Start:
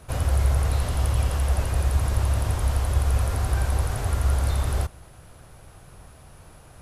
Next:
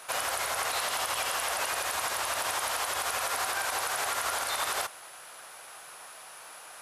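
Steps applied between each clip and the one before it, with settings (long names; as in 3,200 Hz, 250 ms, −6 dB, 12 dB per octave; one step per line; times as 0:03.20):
high-pass filter 950 Hz 12 dB per octave
brickwall limiter −29 dBFS, peak gain reduction 9.5 dB
level +9 dB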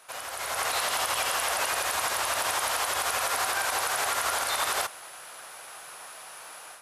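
automatic gain control gain up to 10.5 dB
level −7.5 dB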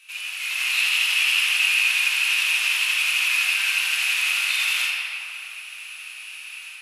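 high-pass with resonance 2,600 Hz, resonance Q 9.2
rectangular room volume 140 cubic metres, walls hard, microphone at 0.86 metres
level −4.5 dB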